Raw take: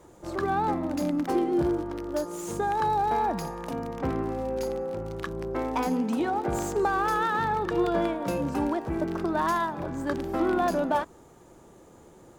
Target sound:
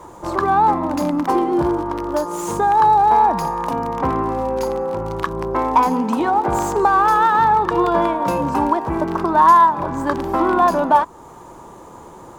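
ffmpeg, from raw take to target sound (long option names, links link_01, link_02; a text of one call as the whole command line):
ffmpeg -i in.wav -filter_complex "[0:a]equalizer=frequency=1000:width_type=o:width=0.57:gain=13.5,asplit=2[link_01][link_02];[link_02]acompressor=threshold=-32dB:ratio=6,volume=0.5dB[link_03];[link_01][link_03]amix=inputs=2:normalize=0,volume=3.5dB" out.wav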